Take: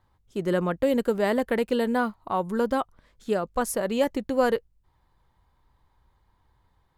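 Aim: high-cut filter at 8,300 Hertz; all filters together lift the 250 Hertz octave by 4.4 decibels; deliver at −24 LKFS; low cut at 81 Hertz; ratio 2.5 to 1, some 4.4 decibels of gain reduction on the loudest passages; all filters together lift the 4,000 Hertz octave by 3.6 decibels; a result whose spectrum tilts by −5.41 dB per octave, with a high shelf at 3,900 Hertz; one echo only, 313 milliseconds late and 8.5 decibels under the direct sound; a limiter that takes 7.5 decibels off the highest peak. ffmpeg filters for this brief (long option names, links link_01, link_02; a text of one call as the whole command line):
ffmpeg -i in.wav -af "highpass=81,lowpass=8300,equalizer=frequency=250:width_type=o:gain=5,highshelf=frequency=3900:gain=-4,equalizer=frequency=4000:width_type=o:gain=7.5,acompressor=threshold=-23dB:ratio=2.5,alimiter=limit=-20dB:level=0:latency=1,aecho=1:1:313:0.376,volume=6dB" out.wav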